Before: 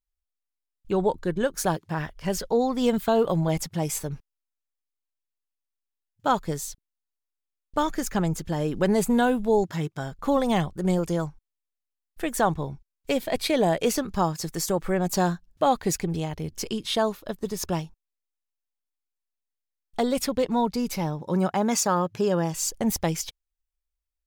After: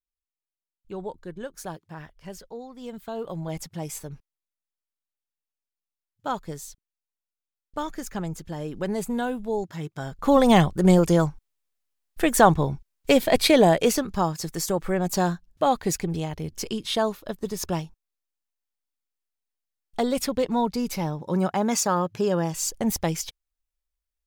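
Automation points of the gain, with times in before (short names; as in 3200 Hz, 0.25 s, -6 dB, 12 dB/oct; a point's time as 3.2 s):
2.2 s -11 dB
2.69 s -17.5 dB
3.62 s -6 dB
9.74 s -6 dB
10.46 s +7 dB
13.48 s +7 dB
14.14 s 0 dB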